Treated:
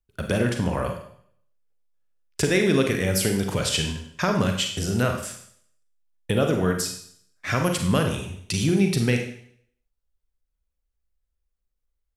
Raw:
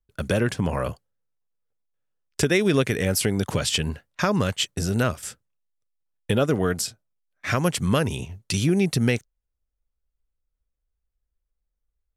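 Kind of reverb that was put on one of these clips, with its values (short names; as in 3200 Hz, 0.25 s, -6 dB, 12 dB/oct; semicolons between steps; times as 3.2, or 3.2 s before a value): Schroeder reverb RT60 0.62 s, combs from 33 ms, DRR 3.5 dB; gain -1.5 dB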